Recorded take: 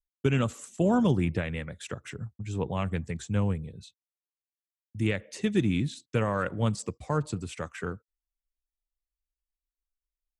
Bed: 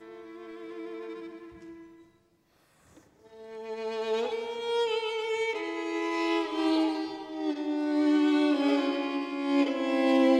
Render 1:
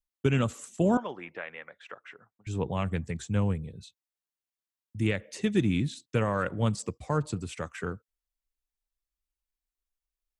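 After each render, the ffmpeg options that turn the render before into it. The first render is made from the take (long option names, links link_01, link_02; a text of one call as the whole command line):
ffmpeg -i in.wav -filter_complex "[0:a]asettb=1/sr,asplit=3[link_01][link_02][link_03];[link_01]atrim=end=0.974[link_04];[link_02]atrim=start=0.97:end=2.47,asetpts=PTS-STARTPTS,afade=type=in:duration=0.004:curve=qsin,afade=type=out:start_time=1.496:duration=0.004:curve=qsin,highpass=730,lowpass=2100[link_05];[link_03]atrim=start=2.466[link_06];[link_04][link_05]acrossfade=duration=0.004:curve1=hsin:curve2=qsin[link_07];[link_07][link_06]acrossfade=duration=0.004:curve1=qsin:curve2=hsin" out.wav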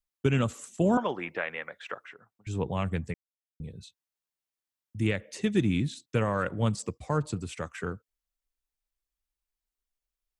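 ffmpeg -i in.wav -filter_complex "[0:a]asettb=1/sr,asplit=3[link_01][link_02][link_03];[link_01]atrim=end=0.974[link_04];[link_02]atrim=start=0.97:end=2.06,asetpts=PTS-STARTPTS,afade=type=in:duration=0.004:curve=qsin,afade=type=out:start_time=1.086:duration=0.004:curve=qsin,acontrast=65[link_05];[link_03]atrim=start=2.056[link_06];[link_04][link_05]acrossfade=duration=0.004:curve1=hsin:curve2=qsin[link_07];[link_07][link_06]acrossfade=duration=0.004:curve1=qsin:curve2=hsin,asplit=3[link_08][link_09][link_10];[link_08]atrim=end=3.14,asetpts=PTS-STARTPTS,afade=type=out:start_time=3.136:duration=0.004:curve=hsin[link_11];[link_09]atrim=start=3.14:end=3.6,asetpts=PTS-STARTPTS,volume=0[link_12];[link_10]atrim=start=3.6,asetpts=PTS-STARTPTS,afade=type=in:duration=0.004:curve=hsin[link_13];[link_11][link_12][link_13]concat=n=3:v=0:a=1" out.wav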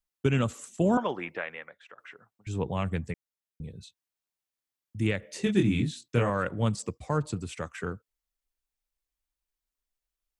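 ffmpeg -i in.wav -filter_complex "[0:a]asettb=1/sr,asplit=3[link_01][link_02][link_03];[link_01]atrim=end=5.204[link_04];[link_02]atrim=start=5.2:end=6.3,asetpts=PTS-STARTPTS,afade=type=in:duration=0.004:curve=qsin,afade=type=out:start_time=1.096:duration=0.004:curve=qsin,asplit=2[link_05][link_06];[link_06]adelay=25,volume=-4dB[link_07];[link_05][link_07]amix=inputs=2:normalize=0,atrim=end_sample=48510[link_08];[link_03]atrim=start=6.296[link_09];[link_04][link_08]acrossfade=duration=0.004:curve1=hsin:curve2=qsin[link_10];[link_10][link_09]acrossfade=duration=0.004:curve1=qsin:curve2=hsin,asplit=2[link_11][link_12];[link_11]atrim=end=1.98,asetpts=PTS-STARTPTS,afade=type=out:start_time=1.19:duration=0.79:silence=0.141254[link_13];[link_12]atrim=start=1.98,asetpts=PTS-STARTPTS,afade=type=in:duration=0.004:curve=hsin:silence=0.141254[link_14];[link_13][link_14]concat=n=2:v=0:a=1" out.wav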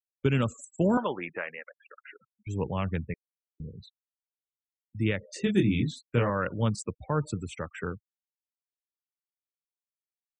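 ffmpeg -i in.wav -af "afftfilt=real='re*gte(hypot(re,im),0.00794)':imag='im*gte(hypot(re,im),0.00794)':win_size=1024:overlap=0.75,bandreject=frequency=710:width=12" out.wav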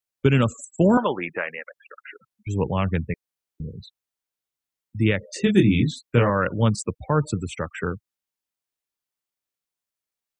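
ffmpeg -i in.wav -af "volume=7dB" out.wav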